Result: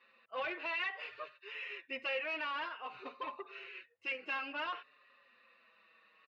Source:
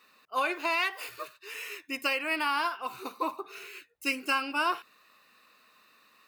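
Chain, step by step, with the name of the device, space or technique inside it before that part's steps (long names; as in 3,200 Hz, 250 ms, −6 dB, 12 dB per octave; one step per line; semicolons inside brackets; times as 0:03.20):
barber-pole flanger into a guitar amplifier (barber-pole flanger 5.4 ms −0.55 Hz; soft clipping −32.5 dBFS, distortion −9 dB; loudspeaker in its box 84–3,600 Hz, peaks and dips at 160 Hz −8 dB, 310 Hz −6 dB, 540 Hz +8 dB, 1,900 Hz +6 dB, 2,800 Hz +4 dB)
level −3.5 dB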